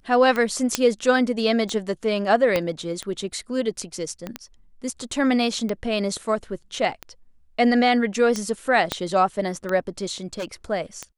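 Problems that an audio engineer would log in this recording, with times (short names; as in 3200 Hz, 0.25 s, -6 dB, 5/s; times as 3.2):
tick 45 rpm -14 dBFS
0.75 pop -3 dBFS
2.56 pop -8 dBFS
4.27 pop -17 dBFS
8.92 pop -7 dBFS
10.33–10.45 clipped -25 dBFS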